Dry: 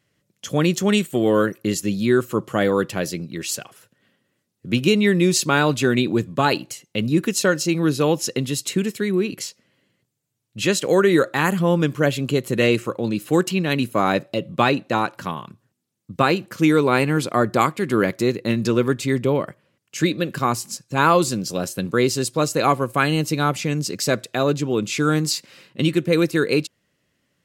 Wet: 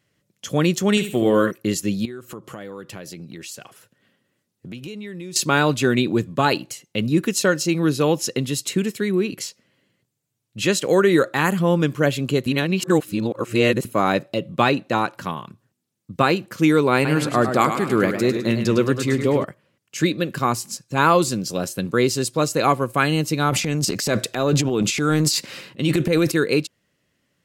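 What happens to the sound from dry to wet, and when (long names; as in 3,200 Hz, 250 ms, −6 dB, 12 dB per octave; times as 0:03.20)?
0:00.90–0:01.51: flutter between parallel walls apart 11.9 metres, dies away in 0.42 s
0:02.05–0:05.36: downward compressor 5 to 1, threshold −33 dBFS
0:12.46–0:13.85: reverse
0:16.94–0:19.44: feedback echo with a swinging delay time 104 ms, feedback 51%, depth 106 cents, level −8 dB
0:23.49–0:26.32: transient designer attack −4 dB, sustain +11 dB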